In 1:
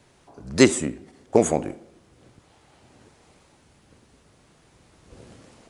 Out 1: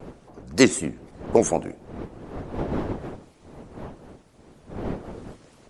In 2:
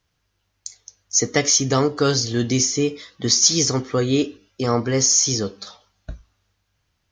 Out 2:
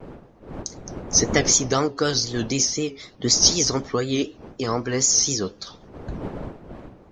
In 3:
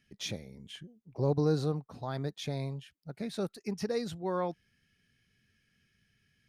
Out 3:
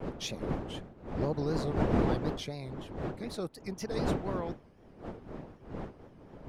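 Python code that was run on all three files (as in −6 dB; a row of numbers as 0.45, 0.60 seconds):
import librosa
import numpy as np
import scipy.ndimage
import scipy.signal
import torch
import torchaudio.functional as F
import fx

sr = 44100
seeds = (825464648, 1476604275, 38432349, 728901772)

y = fx.dmg_wind(x, sr, seeds[0], corner_hz=420.0, level_db=-34.0)
y = fx.hpss(y, sr, part='percussive', gain_db=7)
y = fx.vibrato(y, sr, rate_hz=4.0, depth_cents=100.0)
y = y * 10.0 ** (-6.5 / 20.0)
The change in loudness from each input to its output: −3.0, −1.5, 0.0 LU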